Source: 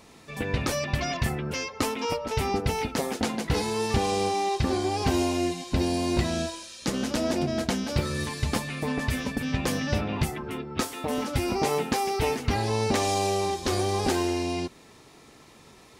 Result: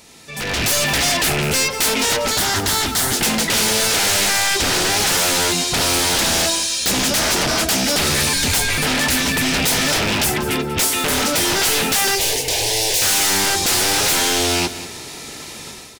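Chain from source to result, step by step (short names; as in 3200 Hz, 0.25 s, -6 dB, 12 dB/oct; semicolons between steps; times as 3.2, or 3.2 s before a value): rattling part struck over -32 dBFS, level -27 dBFS; 8.33–8.78 frequency shift -160 Hz; wavefolder -28.5 dBFS; high shelf 2400 Hz +11.5 dB; notch 1100 Hz, Q 9.2; soft clip -28 dBFS, distortion -12 dB; 12.15–13.02 fixed phaser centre 540 Hz, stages 4; AGC gain up to 13 dB; 2.3–3.17 thirty-one-band EQ 100 Hz +7 dB, 500 Hz -12 dB, 2500 Hz -8 dB; feedback echo 0.189 s, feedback 26%, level -14 dB; gain +1.5 dB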